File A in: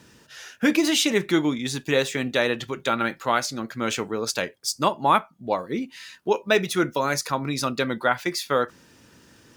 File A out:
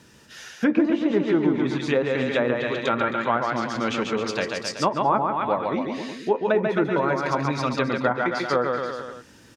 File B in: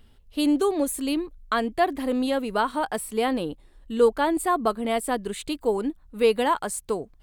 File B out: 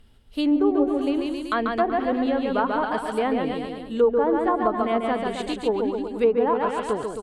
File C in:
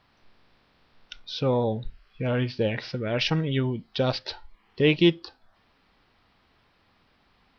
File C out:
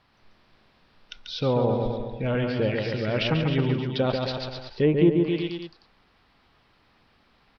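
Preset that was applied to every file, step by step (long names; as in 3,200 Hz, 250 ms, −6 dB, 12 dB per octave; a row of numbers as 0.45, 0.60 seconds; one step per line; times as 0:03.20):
bouncing-ball delay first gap 140 ms, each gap 0.9×, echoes 5
treble cut that deepens with the level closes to 980 Hz, closed at −15.5 dBFS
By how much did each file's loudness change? +0.5, +1.5, +1.0 LU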